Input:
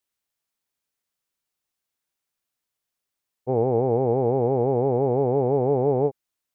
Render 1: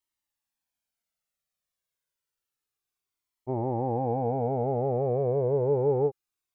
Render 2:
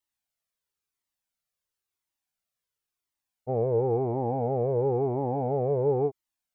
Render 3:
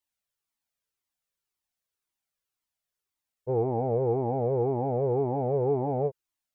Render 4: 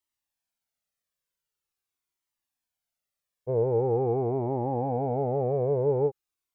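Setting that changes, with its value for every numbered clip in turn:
flanger whose copies keep moving one way, speed: 0.29, 0.97, 1.9, 0.45 Hertz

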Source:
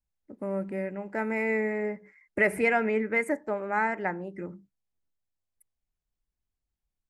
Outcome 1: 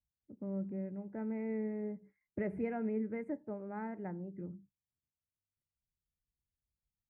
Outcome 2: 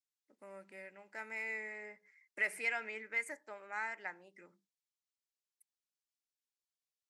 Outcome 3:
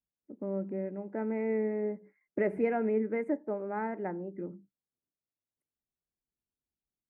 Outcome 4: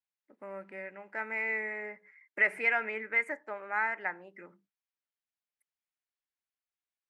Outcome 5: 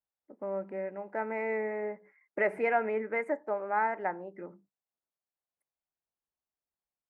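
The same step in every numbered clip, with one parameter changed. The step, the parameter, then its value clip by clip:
resonant band-pass, frequency: 110, 5,400, 300, 2,000, 780 Hertz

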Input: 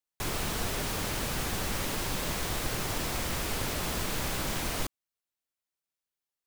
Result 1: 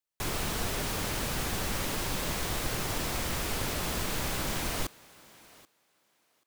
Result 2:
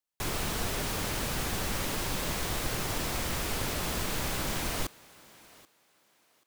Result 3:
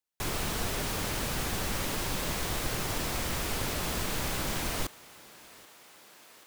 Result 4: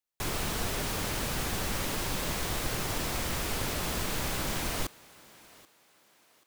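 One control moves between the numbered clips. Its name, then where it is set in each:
feedback echo with a high-pass in the loop, feedback: 16, 25, 77, 37%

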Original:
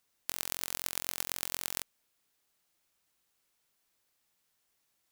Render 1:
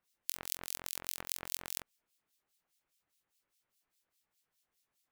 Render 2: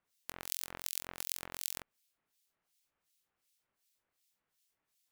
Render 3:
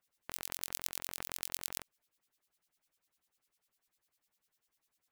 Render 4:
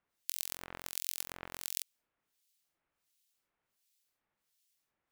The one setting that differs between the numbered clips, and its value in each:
two-band tremolo in antiphase, speed: 4.9, 2.7, 10, 1.4 Hertz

